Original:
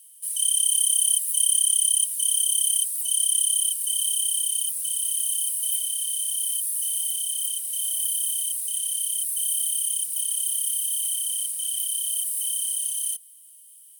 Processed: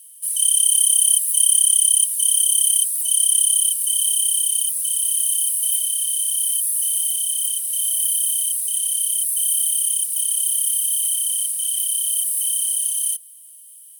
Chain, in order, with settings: bell 11000 Hz +4 dB 0.41 oct; gain +3.5 dB

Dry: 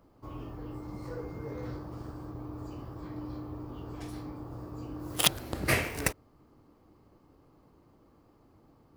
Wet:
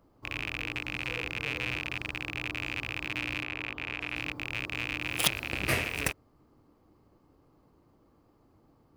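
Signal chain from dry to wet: rattling part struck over -42 dBFS, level -17 dBFS; 3.43–4.16 tone controls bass -5 dB, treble -10 dB; gain -2.5 dB

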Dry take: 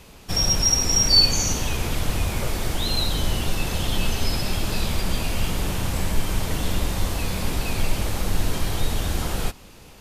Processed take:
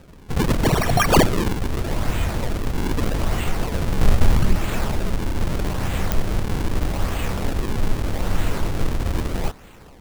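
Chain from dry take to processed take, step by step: 4.01–4.56 tilt shelf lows +8 dB, about 660 Hz; decimation with a swept rate 40×, swing 160% 0.8 Hz; pops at 6.12, -6 dBFS; gain +1.5 dB

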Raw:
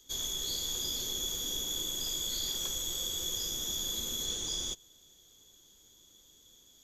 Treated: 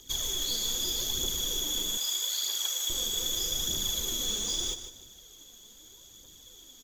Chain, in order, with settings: in parallel at +1 dB: compressor 5:1, threshold -44 dBFS, peak gain reduction 12 dB; on the sum: phaser 0.8 Hz, delay 4.9 ms, feedback 49%; feedback echo 0.152 s, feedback 29%, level -10.5 dB; short-mantissa float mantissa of 2-bit; 1.97–2.9 HPF 740 Hz 12 dB/oct; on a send at -18 dB: reverb RT60 2.5 s, pre-delay 5 ms

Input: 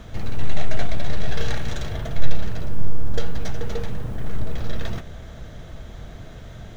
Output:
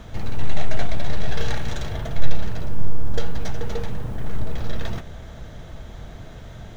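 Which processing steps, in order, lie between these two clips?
bell 890 Hz +3.5 dB 0.35 oct

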